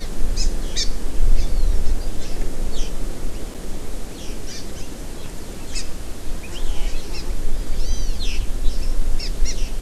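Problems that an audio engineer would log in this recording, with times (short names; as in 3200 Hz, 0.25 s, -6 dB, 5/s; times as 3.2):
3.54–3.55 gap 6.4 ms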